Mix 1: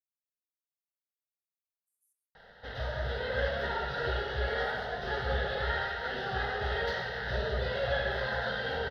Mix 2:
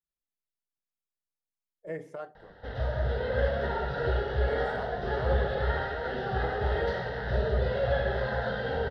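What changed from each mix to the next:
speech: remove inverse Chebyshev high-pass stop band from 2400 Hz, stop band 80 dB; master: add tilt shelf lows +6.5 dB, about 1200 Hz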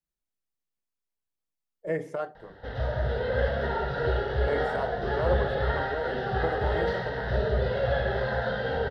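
speech +7.5 dB; reverb: on, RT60 0.50 s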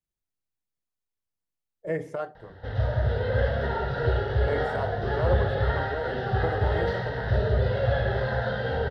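master: add bell 98 Hz +14 dB 0.48 oct

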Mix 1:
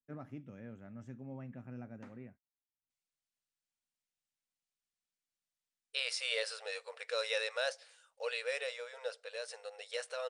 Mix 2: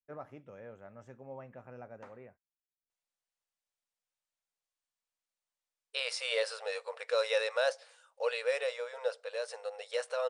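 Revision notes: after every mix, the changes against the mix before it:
master: add graphic EQ 125/250/500/1000 Hz -5/-10/+8/+7 dB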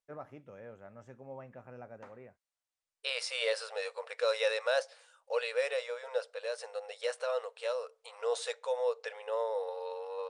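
second voice: entry -2.90 s

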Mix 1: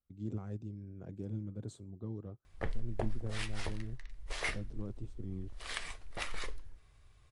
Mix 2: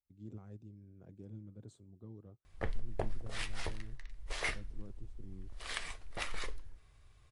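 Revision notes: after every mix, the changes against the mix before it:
speech -9.0 dB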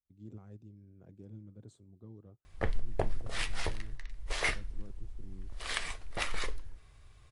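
background +5.0 dB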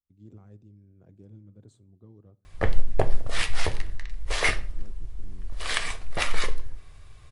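background +6.5 dB; reverb: on, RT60 0.50 s

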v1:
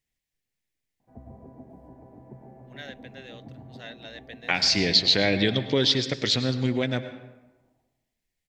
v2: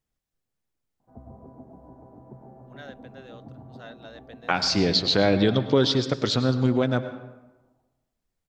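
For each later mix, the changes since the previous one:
second voice +3.5 dB; master: add resonant high shelf 1600 Hz -6 dB, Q 3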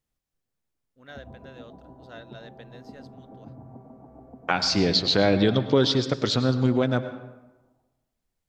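first voice: entry -1.70 s

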